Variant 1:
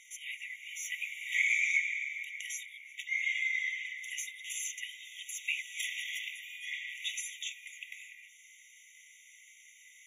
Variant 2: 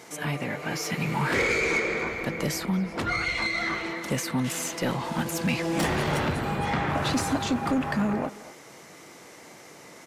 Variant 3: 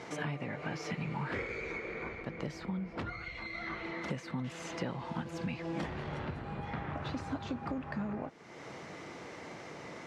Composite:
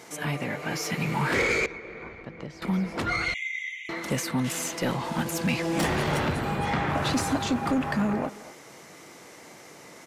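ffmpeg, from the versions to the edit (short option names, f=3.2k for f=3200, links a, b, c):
-filter_complex "[1:a]asplit=3[a][b][c];[a]atrim=end=1.662[d];[2:a]atrim=start=1.658:end=2.622[e];[b]atrim=start=2.618:end=3.342[f];[0:a]atrim=start=3.338:end=3.892[g];[c]atrim=start=3.888[h];[d][e]acrossfade=d=0.004:c1=hsin:c2=hsin[i];[i][f]acrossfade=d=0.004:c1=hsin:c2=hsin[j];[j][g]acrossfade=d=0.004:c1=hsin:c2=hsin[k];[k][h]acrossfade=d=0.004:c1=hsin:c2=hsin"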